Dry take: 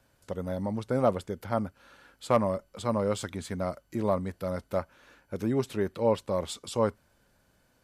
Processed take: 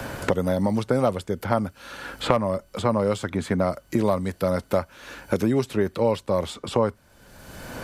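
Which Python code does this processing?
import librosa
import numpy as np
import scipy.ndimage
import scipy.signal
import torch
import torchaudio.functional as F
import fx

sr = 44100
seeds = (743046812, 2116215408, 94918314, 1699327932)

y = fx.band_squash(x, sr, depth_pct=100)
y = y * librosa.db_to_amplitude(5.5)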